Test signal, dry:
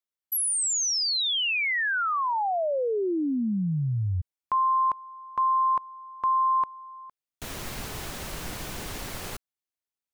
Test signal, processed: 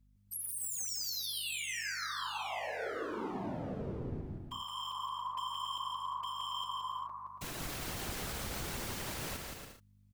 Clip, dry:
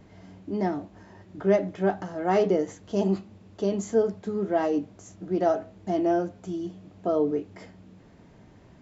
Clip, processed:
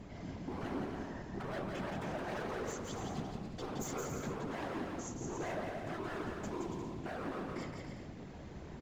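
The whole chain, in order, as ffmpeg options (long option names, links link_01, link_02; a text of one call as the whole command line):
ffmpeg -i in.wav -af "acompressor=threshold=-37dB:ratio=5:attack=0.34:release=32:knee=6,aeval=exprs='0.0119*(abs(mod(val(0)/0.0119+3,4)-2)-1)':channel_layout=same,afftfilt=real='hypot(re,im)*cos(2*PI*random(0))':imag='hypot(re,im)*sin(2*PI*random(1))':win_size=512:overlap=0.75,aeval=exprs='val(0)+0.000224*(sin(2*PI*50*n/s)+sin(2*PI*2*50*n/s)/2+sin(2*PI*3*50*n/s)/3+sin(2*PI*4*50*n/s)/4+sin(2*PI*5*50*n/s)/5)':channel_layout=same,aecho=1:1:170|280.5|352.3|399|429.4:0.631|0.398|0.251|0.158|0.1,volume=8dB" out.wav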